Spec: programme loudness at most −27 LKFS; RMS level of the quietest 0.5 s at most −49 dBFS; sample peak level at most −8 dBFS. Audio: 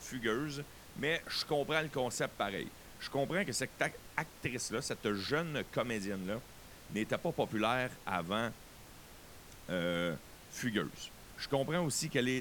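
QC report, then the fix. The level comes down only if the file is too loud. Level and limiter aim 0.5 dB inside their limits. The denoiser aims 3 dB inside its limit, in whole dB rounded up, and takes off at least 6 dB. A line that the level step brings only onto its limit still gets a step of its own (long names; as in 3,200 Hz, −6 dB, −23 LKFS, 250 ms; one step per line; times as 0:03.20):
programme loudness −36.5 LKFS: in spec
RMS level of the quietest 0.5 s −54 dBFS: in spec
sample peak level −16.0 dBFS: in spec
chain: no processing needed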